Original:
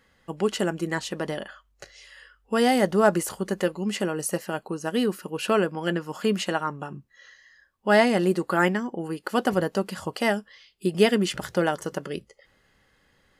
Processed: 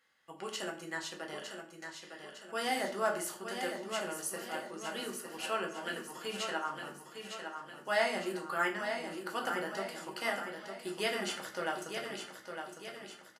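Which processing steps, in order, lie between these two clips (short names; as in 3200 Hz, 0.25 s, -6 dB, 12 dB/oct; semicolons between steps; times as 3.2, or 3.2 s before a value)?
HPF 1200 Hz 6 dB/oct; feedback echo 0.907 s, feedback 49%, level -7 dB; reverb RT60 0.50 s, pre-delay 6 ms, DRR 0 dB; gain -9 dB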